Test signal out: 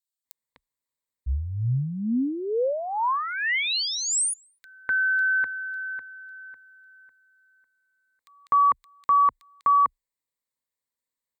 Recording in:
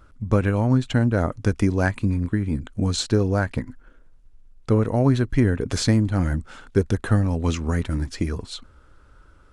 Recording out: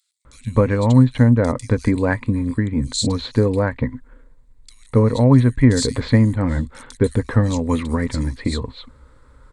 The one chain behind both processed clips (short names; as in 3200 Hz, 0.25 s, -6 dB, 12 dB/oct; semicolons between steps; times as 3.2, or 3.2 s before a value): ripple EQ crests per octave 1, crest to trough 9 dB; bands offset in time highs, lows 0.25 s, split 3300 Hz; gain +3 dB